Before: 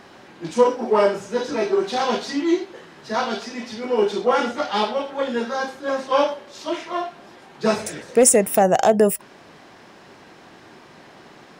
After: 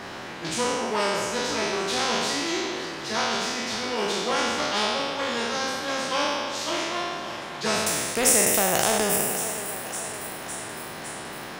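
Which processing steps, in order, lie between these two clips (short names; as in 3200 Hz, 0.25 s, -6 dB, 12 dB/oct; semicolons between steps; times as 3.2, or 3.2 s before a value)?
spectral trails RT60 1.03 s; on a send: thinning echo 0.557 s, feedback 60%, high-pass 550 Hz, level -19 dB; on the sum: spectral compressor 2:1; gain -6 dB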